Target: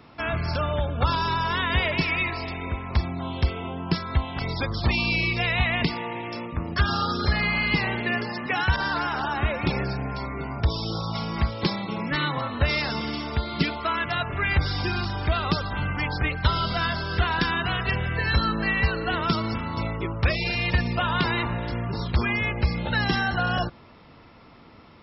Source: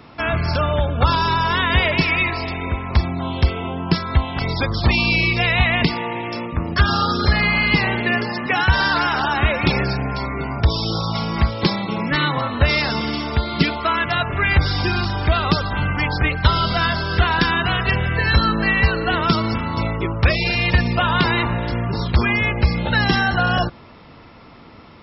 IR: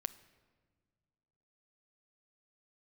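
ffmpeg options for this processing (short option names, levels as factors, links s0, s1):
-filter_complex "[0:a]asettb=1/sr,asplit=3[s0][s1][s2];[s0]atrim=end=8.764[s3];[s1]atrim=start=8.76:end=11.13,asetpts=PTS-STARTPTS,afade=t=in:d=0.004:c=qsin,afade=t=out:st=2.366:d=0.004:c=qsin,adynamicequalizer=threshold=0.0316:dfrequency=1600:dqfactor=0.7:tfrequency=1600:tqfactor=0.7:attack=5:release=100:ratio=0.375:range=2:mode=cutabove:tftype=highshelf[s4];[s2]atrim=start=11.126[s5];[s3][s4]acrossfade=d=0.004:c1=hsin:c2=qsin[s6];[s6][s5]acrossfade=d=0.004:c1=qsin:c2=hsin,volume=0.473"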